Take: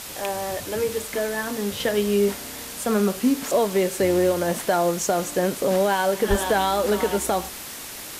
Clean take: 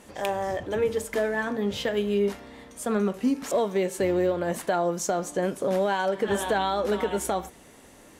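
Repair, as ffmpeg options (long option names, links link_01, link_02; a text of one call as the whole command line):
ffmpeg -i in.wav -filter_complex "[0:a]asplit=3[link_01][link_02][link_03];[link_01]afade=type=out:start_time=6.29:duration=0.02[link_04];[link_02]highpass=frequency=140:width=0.5412,highpass=frequency=140:width=1.3066,afade=type=in:start_time=6.29:duration=0.02,afade=type=out:start_time=6.41:duration=0.02[link_05];[link_03]afade=type=in:start_time=6.41:duration=0.02[link_06];[link_04][link_05][link_06]amix=inputs=3:normalize=0,afwtdn=0.018,asetnsamples=nb_out_samples=441:pad=0,asendcmd='1.8 volume volume -4dB',volume=0dB" out.wav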